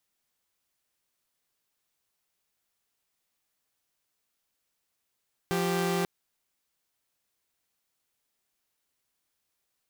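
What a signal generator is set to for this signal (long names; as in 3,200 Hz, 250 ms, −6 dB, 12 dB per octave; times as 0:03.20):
held notes F3/G4 saw, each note −26 dBFS 0.54 s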